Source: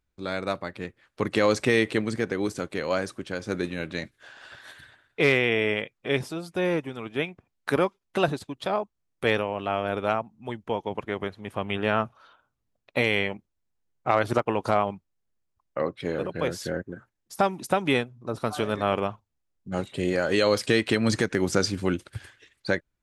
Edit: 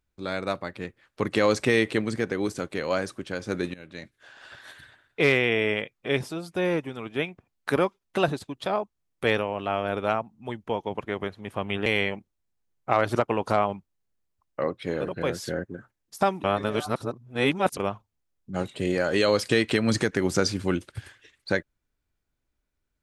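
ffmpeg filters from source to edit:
ffmpeg -i in.wav -filter_complex "[0:a]asplit=5[link_01][link_02][link_03][link_04][link_05];[link_01]atrim=end=3.74,asetpts=PTS-STARTPTS,afade=type=out:start_time=3.736:duration=0.004:curve=hsin:silence=0.141254[link_06];[link_02]atrim=start=3.74:end=11.862,asetpts=PTS-STARTPTS,afade=type=in:duration=0.79:silence=0.141254[link_07];[link_03]atrim=start=13.038:end=17.622[link_08];[link_04]atrim=start=17.618:end=18.952,asetpts=PTS-STARTPTS,areverse[link_09];[link_05]atrim=start=18.948[link_10];[link_06][link_07]concat=n=2:v=0:a=1[link_11];[link_11][link_08]acrossfade=duration=0.004:curve1=hsin:curve2=hsin[link_12];[link_12][link_09]acrossfade=duration=0.004:curve1=hsin:curve2=hsin[link_13];[link_13][link_10]acrossfade=duration=0.004:curve1=hsin:curve2=hsin" out.wav

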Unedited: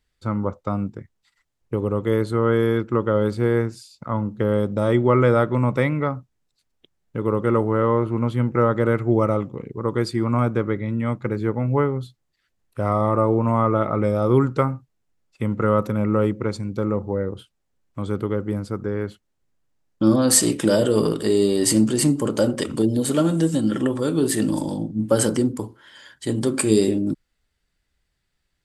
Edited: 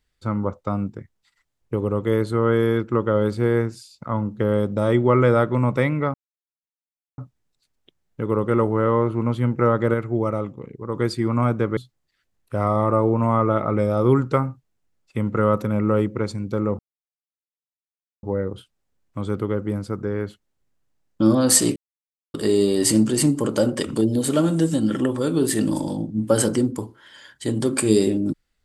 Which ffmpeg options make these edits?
ffmpeg -i in.wav -filter_complex "[0:a]asplit=8[link_01][link_02][link_03][link_04][link_05][link_06][link_07][link_08];[link_01]atrim=end=6.14,asetpts=PTS-STARTPTS,afade=type=out:start_time=6.136:duration=0.004:curve=hsin,apad=pad_dur=1.04[link_09];[link_02]atrim=start=6.14:end=8.902,asetpts=PTS-STARTPTS,afade=type=in:duration=0.004:curve=hsin[link_10];[link_03]atrim=start=8.898:end=9.902,asetpts=PTS-STARTPTS,volume=-4dB[link_11];[link_04]atrim=start=9.898:end=10.732[link_12];[link_05]atrim=start=12.018:end=17.04,asetpts=PTS-STARTPTS,afade=type=out:start_time=5.018:duration=0.004:curve=hsin,apad=pad_dur=1.44[link_13];[link_06]atrim=start=17.04:end=20.57,asetpts=PTS-STARTPTS,afade=type=in:duration=0.004:curve=hsin,afade=type=out:start_time=3.526:duration=0.004:curve=hsin[link_14];[link_07]atrim=start=20.57:end=21.15,asetpts=PTS-STARTPTS,volume=0[link_15];[link_08]atrim=start=21.15,asetpts=PTS-STARTPTS,afade=type=in:duration=0.004:curve=hsin[link_16];[link_09][link_10]concat=n=2:v=0:a=1[link_17];[link_17][link_11]acrossfade=duration=0.004:curve1=hsin:curve2=hsin[link_18];[link_18][link_12]acrossfade=duration=0.004:curve1=hsin:curve2=hsin[link_19];[link_13][link_14][link_15][link_16]concat=n=4:v=0:a=1[link_20];[link_19][link_20]acrossfade=duration=0.004:curve1=hsin:curve2=hsin" out.wav

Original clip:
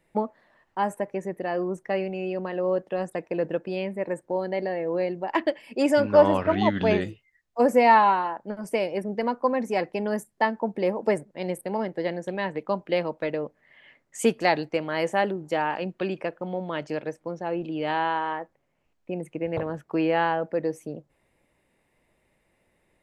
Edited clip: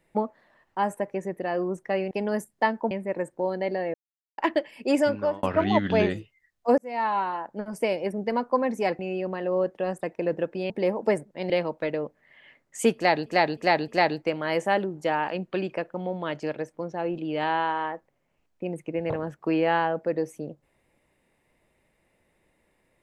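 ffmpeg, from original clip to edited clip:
ffmpeg -i in.wav -filter_complex "[0:a]asplit=13[link_01][link_02][link_03][link_04][link_05][link_06][link_07][link_08][link_09][link_10][link_11][link_12][link_13];[link_01]atrim=end=2.112[link_14];[link_02]atrim=start=9.898:end=10.702[link_15];[link_03]atrim=start=3.818:end=4.85,asetpts=PTS-STARTPTS,afade=type=out:start_time=1.028:duration=0.004:curve=hsin[link_16];[link_04]atrim=start=4.85:end=5.29,asetpts=PTS-STARTPTS,volume=0[link_17];[link_05]atrim=start=5.29:end=6.34,asetpts=PTS-STARTPTS,afade=type=in:duration=0.004:curve=hsin,afade=type=out:start_time=0.57:duration=0.48[link_18];[link_06]atrim=start=6.34:end=7.69,asetpts=PTS-STARTPTS,afade=type=in:duration=0.004:curve=hsin,afade=type=out:start_time=1.346:duration=0.004:curve=hsin[link_19];[link_07]atrim=start=7.69:end=9.902,asetpts=PTS-STARTPTS,afade=type=in:duration=0.79[link_20];[link_08]atrim=start=2.108:end=3.822[link_21];[link_09]atrim=start=10.698:end=11.502[link_22];[link_10]atrim=start=12.898:end=14.662[link_23];[link_11]atrim=start=14.348:end=14.662[link_24];[link_12]atrim=start=14.348:end=14.662[link_25];[link_13]atrim=start=14.348[link_26];[link_14][link_15]acrossfade=duration=0.004:curve1=hsin:curve2=hsin[link_27];[link_16][link_17][link_18][link_19][link_20]concat=n=5:v=0:a=1[link_28];[link_27][link_28]acrossfade=duration=0.004:curve1=hsin:curve2=hsin[link_29];[link_29][link_21]acrossfade=duration=0.004:curve1=hsin:curve2=hsin[link_30];[link_30][link_22]acrossfade=duration=0.004:curve1=hsin:curve2=hsin[link_31];[link_31][link_23]acrossfade=duration=0.004:curve1=hsin:curve2=hsin[link_32];[link_32][link_24]acrossfade=duration=0.004:curve1=hsin:curve2=hsin[link_33];[link_33][link_25]acrossfade=duration=0.004:curve1=hsin:curve2=hsin[link_34];[link_34][link_26]acrossfade=duration=0.004:curve1=hsin:curve2=hsin" out.wav

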